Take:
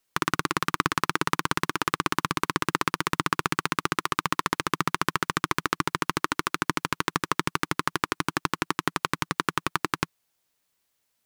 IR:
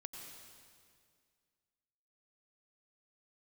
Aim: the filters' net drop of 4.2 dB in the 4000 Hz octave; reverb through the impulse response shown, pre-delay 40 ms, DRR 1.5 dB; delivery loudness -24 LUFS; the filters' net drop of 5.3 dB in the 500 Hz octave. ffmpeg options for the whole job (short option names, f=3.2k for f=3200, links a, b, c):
-filter_complex "[0:a]equalizer=f=500:t=o:g=-8,equalizer=f=4k:t=o:g=-5.5,asplit=2[a][b];[1:a]atrim=start_sample=2205,adelay=40[c];[b][c]afir=irnorm=-1:irlink=0,volume=2.5dB[d];[a][d]amix=inputs=2:normalize=0,volume=3dB"